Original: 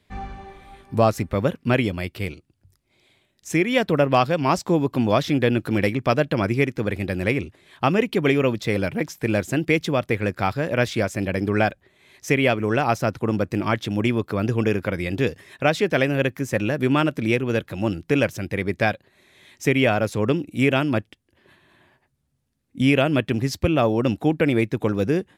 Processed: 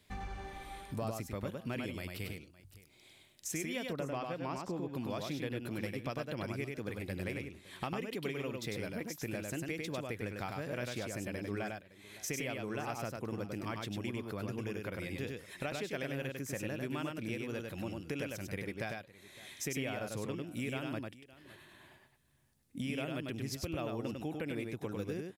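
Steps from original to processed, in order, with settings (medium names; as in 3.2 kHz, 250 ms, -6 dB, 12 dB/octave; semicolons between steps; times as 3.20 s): treble shelf 4.8 kHz +10.5 dB, from 3.93 s -2.5 dB, from 4.95 s +9.5 dB; compression 4:1, threshold -36 dBFS, peak gain reduction 19.5 dB; multi-tap echo 99/563 ms -3.5/-19 dB; trim -4 dB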